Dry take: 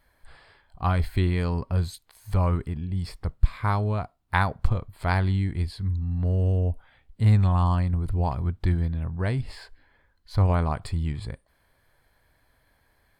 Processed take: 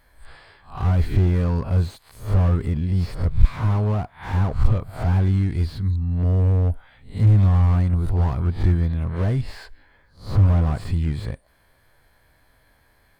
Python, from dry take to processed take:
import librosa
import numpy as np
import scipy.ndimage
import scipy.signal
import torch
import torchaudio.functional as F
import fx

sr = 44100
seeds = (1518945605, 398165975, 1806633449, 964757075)

y = fx.spec_swells(x, sr, rise_s=0.35)
y = fx.leveller(y, sr, passes=1, at=(2.64, 3.29))
y = fx.slew_limit(y, sr, full_power_hz=19.0)
y = y * 10.0 ** (4.5 / 20.0)